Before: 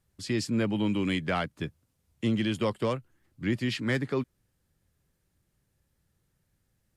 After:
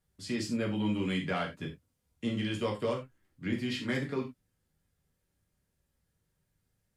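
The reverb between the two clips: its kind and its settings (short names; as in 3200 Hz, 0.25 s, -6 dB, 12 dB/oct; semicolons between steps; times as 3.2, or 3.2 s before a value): non-linear reverb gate 0.12 s falling, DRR -1 dB; gain -7 dB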